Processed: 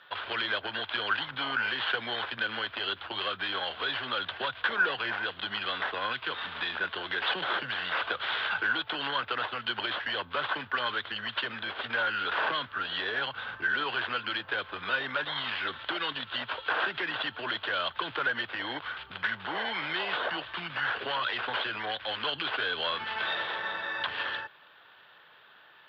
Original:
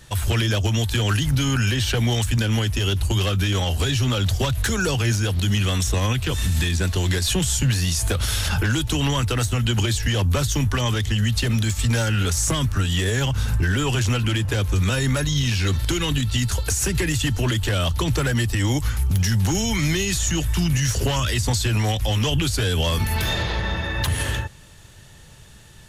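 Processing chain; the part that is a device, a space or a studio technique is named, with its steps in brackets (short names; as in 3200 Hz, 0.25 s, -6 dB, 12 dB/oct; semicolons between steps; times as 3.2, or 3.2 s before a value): toy sound module (decimation joined by straight lines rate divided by 6×; pulse-width modulation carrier 12000 Hz; speaker cabinet 560–4200 Hz, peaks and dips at 1100 Hz +4 dB, 1500 Hz +9 dB, 3300 Hz +8 dB); gain -6 dB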